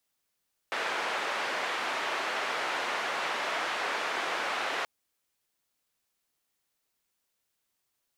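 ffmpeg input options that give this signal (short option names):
-f lavfi -i "anoisesrc=c=white:d=4.13:r=44100:seed=1,highpass=f=500,lowpass=f=1900,volume=-15.7dB"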